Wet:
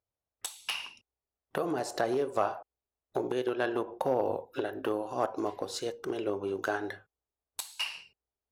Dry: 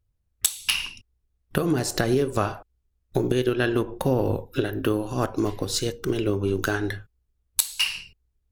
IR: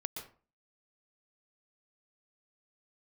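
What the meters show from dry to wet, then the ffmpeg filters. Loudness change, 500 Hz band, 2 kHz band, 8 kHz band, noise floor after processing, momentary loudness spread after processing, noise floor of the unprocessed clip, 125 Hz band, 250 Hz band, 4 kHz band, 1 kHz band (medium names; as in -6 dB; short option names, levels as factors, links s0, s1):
-8.0 dB, -5.5 dB, -8.0 dB, -15.0 dB, under -85 dBFS, 11 LU, -74 dBFS, -19.5 dB, -10.5 dB, -11.0 dB, -1.5 dB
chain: -af "volume=4.73,asoftclip=hard,volume=0.211,bandpass=f=710:t=q:w=1.7:csg=0,crystalizer=i=4:c=0"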